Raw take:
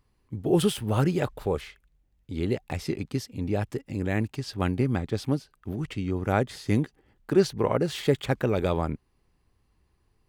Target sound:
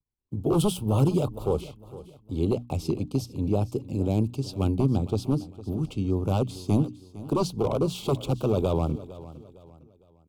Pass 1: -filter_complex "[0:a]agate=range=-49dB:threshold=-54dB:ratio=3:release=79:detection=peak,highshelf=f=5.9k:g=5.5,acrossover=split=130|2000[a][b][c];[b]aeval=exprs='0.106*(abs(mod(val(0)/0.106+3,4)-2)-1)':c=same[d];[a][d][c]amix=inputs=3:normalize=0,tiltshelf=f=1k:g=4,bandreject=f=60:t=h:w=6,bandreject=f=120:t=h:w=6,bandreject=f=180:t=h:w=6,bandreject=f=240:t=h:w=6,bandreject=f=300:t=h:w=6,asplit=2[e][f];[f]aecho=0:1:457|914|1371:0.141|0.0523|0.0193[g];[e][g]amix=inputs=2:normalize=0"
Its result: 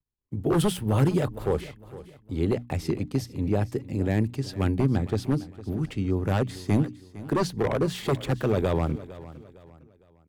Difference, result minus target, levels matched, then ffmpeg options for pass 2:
2000 Hz band +11.5 dB
-filter_complex "[0:a]agate=range=-49dB:threshold=-54dB:ratio=3:release=79:detection=peak,highshelf=f=5.9k:g=5.5,acrossover=split=130|2000[a][b][c];[b]aeval=exprs='0.106*(abs(mod(val(0)/0.106+3,4)-2)-1)':c=same[d];[a][d][c]amix=inputs=3:normalize=0,asuperstop=centerf=1800:order=4:qfactor=1.2,tiltshelf=f=1k:g=4,bandreject=f=60:t=h:w=6,bandreject=f=120:t=h:w=6,bandreject=f=180:t=h:w=6,bandreject=f=240:t=h:w=6,bandreject=f=300:t=h:w=6,asplit=2[e][f];[f]aecho=0:1:457|914|1371:0.141|0.0523|0.0193[g];[e][g]amix=inputs=2:normalize=0"

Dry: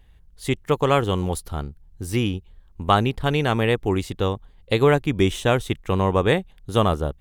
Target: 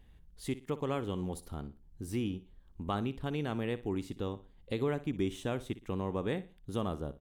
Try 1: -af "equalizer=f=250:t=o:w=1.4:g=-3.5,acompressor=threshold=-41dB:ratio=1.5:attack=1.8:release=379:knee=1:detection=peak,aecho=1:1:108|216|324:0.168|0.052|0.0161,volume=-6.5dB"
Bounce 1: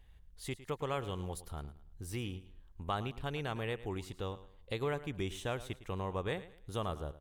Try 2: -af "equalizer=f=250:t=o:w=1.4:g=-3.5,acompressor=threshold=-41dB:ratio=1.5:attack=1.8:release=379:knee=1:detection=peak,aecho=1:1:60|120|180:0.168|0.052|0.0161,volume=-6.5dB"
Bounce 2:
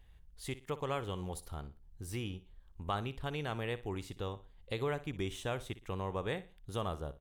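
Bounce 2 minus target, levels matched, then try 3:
250 Hz band -4.5 dB
-af "equalizer=f=250:t=o:w=1.4:g=8,acompressor=threshold=-41dB:ratio=1.5:attack=1.8:release=379:knee=1:detection=peak,aecho=1:1:60|120|180:0.168|0.052|0.0161,volume=-6.5dB"

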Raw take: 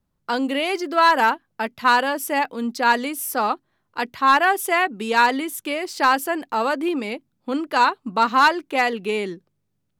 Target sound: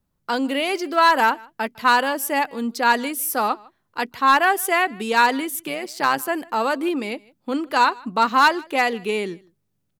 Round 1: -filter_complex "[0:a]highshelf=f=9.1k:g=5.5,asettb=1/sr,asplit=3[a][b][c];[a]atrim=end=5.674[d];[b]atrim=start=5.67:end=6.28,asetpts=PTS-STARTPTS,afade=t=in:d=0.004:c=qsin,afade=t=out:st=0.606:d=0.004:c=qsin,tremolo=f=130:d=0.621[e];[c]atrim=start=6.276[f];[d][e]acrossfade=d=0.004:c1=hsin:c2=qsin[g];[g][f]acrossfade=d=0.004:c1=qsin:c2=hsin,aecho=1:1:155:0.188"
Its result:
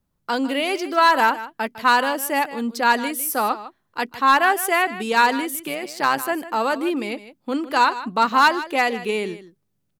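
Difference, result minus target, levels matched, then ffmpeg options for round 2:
echo-to-direct +10.5 dB
-filter_complex "[0:a]highshelf=f=9.1k:g=5.5,asettb=1/sr,asplit=3[a][b][c];[a]atrim=end=5.674[d];[b]atrim=start=5.67:end=6.28,asetpts=PTS-STARTPTS,afade=t=in:d=0.004:c=qsin,afade=t=out:st=0.606:d=0.004:c=qsin,tremolo=f=130:d=0.621[e];[c]atrim=start=6.276[f];[d][e]acrossfade=d=0.004:c1=hsin:c2=qsin[g];[g][f]acrossfade=d=0.004:c1=qsin:c2=hsin,aecho=1:1:155:0.0562"

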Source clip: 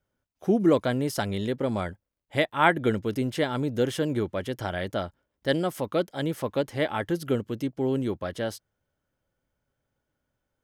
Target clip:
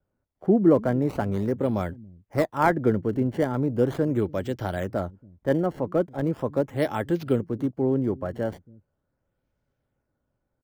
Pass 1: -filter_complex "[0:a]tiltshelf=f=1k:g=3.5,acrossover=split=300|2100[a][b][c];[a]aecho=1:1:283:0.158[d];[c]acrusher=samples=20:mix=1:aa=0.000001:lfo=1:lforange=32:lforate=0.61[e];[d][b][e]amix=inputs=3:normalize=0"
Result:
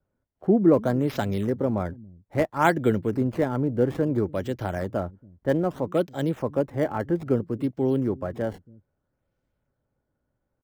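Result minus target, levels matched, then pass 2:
decimation with a swept rate: distortion -10 dB
-filter_complex "[0:a]tiltshelf=f=1k:g=3.5,acrossover=split=300|2100[a][b][c];[a]aecho=1:1:283:0.158[d];[c]acrusher=samples=20:mix=1:aa=0.000001:lfo=1:lforange=32:lforate=0.39[e];[d][b][e]amix=inputs=3:normalize=0"

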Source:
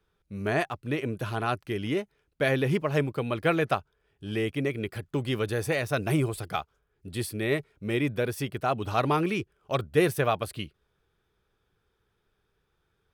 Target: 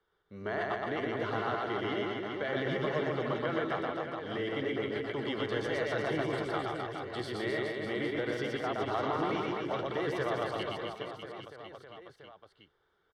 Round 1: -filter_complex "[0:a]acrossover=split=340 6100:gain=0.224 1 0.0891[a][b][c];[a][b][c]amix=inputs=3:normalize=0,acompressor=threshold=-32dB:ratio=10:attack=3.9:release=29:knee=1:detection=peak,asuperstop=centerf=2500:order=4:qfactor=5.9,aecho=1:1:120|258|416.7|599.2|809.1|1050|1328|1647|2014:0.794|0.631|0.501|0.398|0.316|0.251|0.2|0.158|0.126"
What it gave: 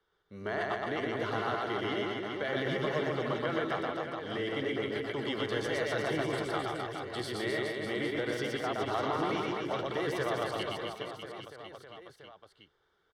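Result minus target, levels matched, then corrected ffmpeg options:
8000 Hz band +6.0 dB
-filter_complex "[0:a]acrossover=split=340 6100:gain=0.224 1 0.0891[a][b][c];[a][b][c]amix=inputs=3:normalize=0,acompressor=threshold=-32dB:ratio=10:attack=3.9:release=29:knee=1:detection=peak,asuperstop=centerf=2500:order=4:qfactor=5.9,highshelf=f=5.8k:g=-11,aecho=1:1:120|258|416.7|599.2|809.1|1050|1328|1647|2014:0.794|0.631|0.501|0.398|0.316|0.251|0.2|0.158|0.126"

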